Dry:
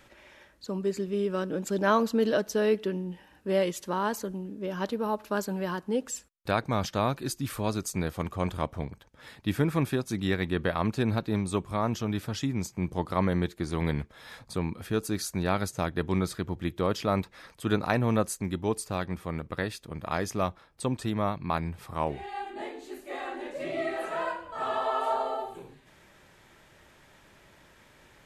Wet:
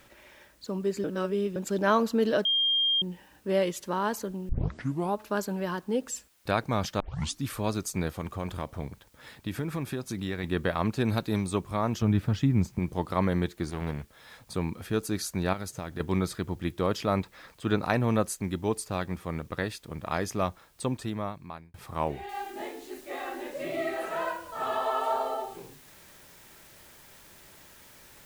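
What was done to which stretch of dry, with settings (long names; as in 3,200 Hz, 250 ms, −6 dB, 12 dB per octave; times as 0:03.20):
0:01.04–0:01.56: reverse
0:02.45–0:03.02: beep over 3,210 Hz −22 dBFS
0:04.49: tape start 0.67 s
0:07.00: tape start 0.41 s
0:08.13–0:10.44: downward compressor 3 to 1, threshold −29 dBFS
0:11.05–0:11.47: high-shelf EQ 4,600 Hz +10 dB
0:12.02–0:12.79: bass and treble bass +9 dB, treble −10 dB
0:13.70–0:14.49: tube saturation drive 20 dB, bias 0.7
0:15.53–0:16.00: downward compressor, threshold −31 dBFS
0:17.17–0:17.82: Bessel low-pass filter 6,000 Hz
0:20.82–0:21.74: fade out
0:22.29: noise floor change −66 dB −55 dB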